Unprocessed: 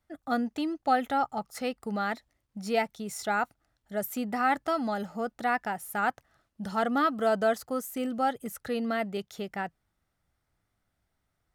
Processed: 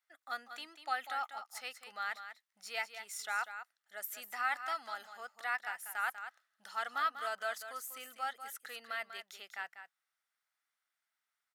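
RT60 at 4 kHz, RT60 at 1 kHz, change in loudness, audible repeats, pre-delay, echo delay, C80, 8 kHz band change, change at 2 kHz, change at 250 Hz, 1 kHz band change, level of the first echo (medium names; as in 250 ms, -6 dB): no reverb, no reverb, -9.5 dB, 1, no reverb, 194 ms, no reverb, -4.0 dB, -3.5 dB, -34.0 dB, -9.5 dB, -10.0 dB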